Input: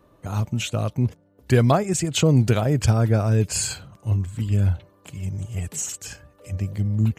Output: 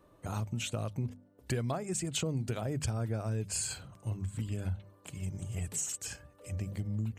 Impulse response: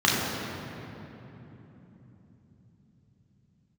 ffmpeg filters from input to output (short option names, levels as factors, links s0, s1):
-af "equalizer=f=8600:t=o:w=0.29:g=6,bandreject=f=50:t=h:w=6,bandreject=f=100:t=h:w=6,bandreject=f=150:t=h:w=6,bandreject=f=200:t=h:w=6,bandreject=f=250:t=h:w=6,acompressor=threshold=0.0501:ratio=5,volume=0.531"